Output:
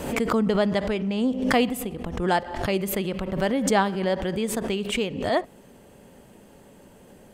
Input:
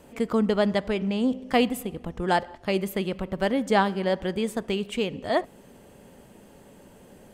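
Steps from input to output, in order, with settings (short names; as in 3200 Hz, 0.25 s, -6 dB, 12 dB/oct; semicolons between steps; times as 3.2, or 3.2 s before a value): backwards sustainer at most 60 dB/s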